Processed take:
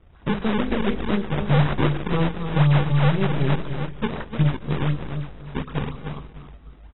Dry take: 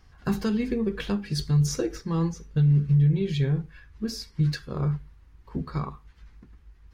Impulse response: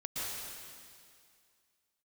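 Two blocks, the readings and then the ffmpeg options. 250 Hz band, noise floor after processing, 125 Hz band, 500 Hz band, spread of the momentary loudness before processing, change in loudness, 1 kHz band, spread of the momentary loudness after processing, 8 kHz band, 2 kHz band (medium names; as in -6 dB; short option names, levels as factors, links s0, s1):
+3.0 dB, -48 dBFS, +2.5 dB, +5.5 dB, 13 LU, +3.0 dB, +12.0 dB, 14 LU, under -40 dB, +11.0 dB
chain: -filter_complex "[0:a]aeval=exprs='0.2*(cos(1*acos(clip(val(0)/0.2,-1,1)))-cos(1*PI/2))+0.0251*(cos(2*acos(clip(val(0)/0.2,-1,1)))-cos(2*PI/2))+0.0282*(cos(4*acos(clip(val(0)/0.2,-1,1)))-cos(4*PI/2))+0.00224*(cos(6*acos(clip(val(0)/0.2,-1,1)))-cos(6*PI/2))+0.0126*(cos(8*acos(clip(val(0)/0.2,-1,1)))-cos(8*PI/2))':c=same,aecho=1:1:301|602|903:0.398|0.0995|0.0249,asplit=2[s0][s1];[1:a]atrim=start_sample=2205[s2];[s1][s2]afir=irnorm=-1:irlink=0,volume=0.158[s3];[s0][s3]amix=inputs=2:normalize=0,acrusher=samples=39:mix=1:aa=0.000001:lfo=1:lforange=62.4:lforate=4,volume=1.19" -ar 22050 -c:a aac -b:a 16k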